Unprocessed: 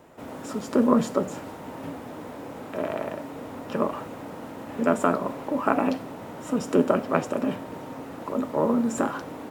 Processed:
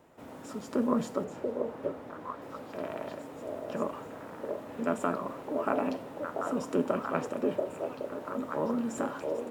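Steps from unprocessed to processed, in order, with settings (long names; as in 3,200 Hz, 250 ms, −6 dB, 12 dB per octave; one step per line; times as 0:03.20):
0:01.24–0:02.42: high-shelf EQ 5,100 Hz −8 dB
on a send: echo through a band-pass that steps 686 ms, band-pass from 490 Hz, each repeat 1.4 octaves, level 0 dB
on the sum: level −8 dB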